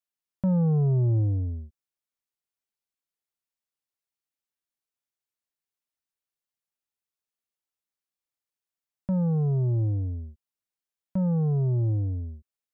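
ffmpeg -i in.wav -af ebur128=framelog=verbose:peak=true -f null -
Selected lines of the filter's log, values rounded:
Integrated loudness:
  I:         -25.8 LUFS
  Threshold: -36.6 LUFS
Loudness range:
  LRA:        11.5 LU
  Threshold: -49.8 LUFS
  LRA low:   -38.9 LUFS
  LRA high:  -27.3 LUFS
True peak:
  Peak:      -20.2 dBFS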